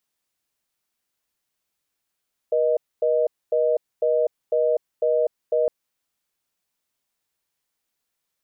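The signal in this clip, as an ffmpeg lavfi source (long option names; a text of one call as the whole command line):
ffmpeg -f lavfi -i "aevalsrc='0.1*(sin(2*PI*480*t)+sin(2*PI*620*t))*clip(min(mod(t,0.5),0.25-mod(t,0.5))/0.005,0,1)':duration=3.16:sample_rate=44100" out.wav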